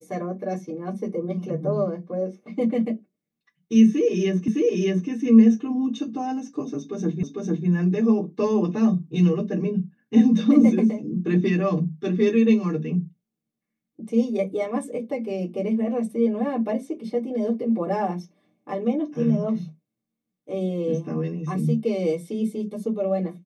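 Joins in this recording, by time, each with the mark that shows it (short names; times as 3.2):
4.48 repeat of the last 0.61 s
7.23 repeat of the last 0.45 s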